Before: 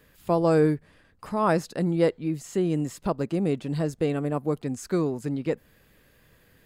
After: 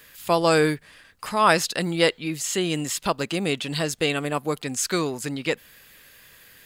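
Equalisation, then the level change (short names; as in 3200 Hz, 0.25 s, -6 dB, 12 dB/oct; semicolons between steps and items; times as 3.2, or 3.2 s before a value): tilt shelf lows -9 dB; dynamic EQ 3200 Hz, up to +6 dB, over -49 dBFS, Q 1.7; +6.0 dB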